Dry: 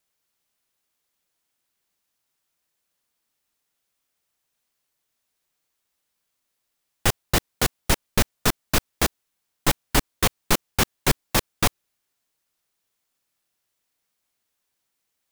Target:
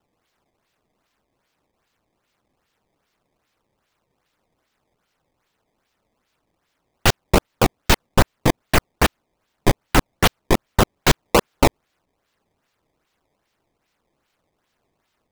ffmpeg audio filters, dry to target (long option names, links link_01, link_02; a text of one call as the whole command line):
ffmpeg -i in.wav -filter_complex "[0:a]asettb=1/sr,asplit=3[link_01][link_02][link_03];[link_01]atrim=end=11.244[link_04];[link_02]atrim=start=11.24:end=11.66,asetpts=PTS-STARTPTS,afade=type=in:duration=0.004:curve=qsin,afade=type=out:start_time=0.416:duration=0.004:curve=qsin,asplit=2[link_05][link_06];[link_06]highpass=frequency=720:poles=1,volume=15dB,asoftclip=type=tanh:threshold=-5dB[link_07];[link_05][link_07]amix=inputs=2:normalize=0,lowpass=frequency=2700:poles=1,volume=-6dB[link_08];[link_03]atrim=start=11.656[link_09];[link_04][link_08]acrossfade=duration=0.004:curve1=hsin:curve2=qsin[link_10];[link_10][link_09]acrossfade=duration=0.004:curve1=qsin:curve2=hsin,acrusher=samples=18:mix=1:aa=0.000001:lfo=1:lforange=28.8:lforate=2.5,volume=5dB" out.wav